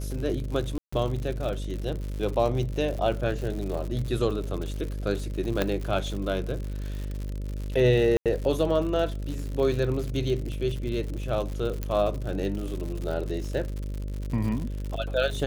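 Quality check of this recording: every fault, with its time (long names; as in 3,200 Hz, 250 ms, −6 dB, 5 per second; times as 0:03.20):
mains buzz 50 Hz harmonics 12 −32 dBFS
surface crackle 110 per second −32 dBFS
0:00.78–0:00.93: drop-out 145 ms
0:05.62: click −10 dBFS
0:08.17–0:08.26: drop-out 87 ms
0:11.83: click −16 dBFS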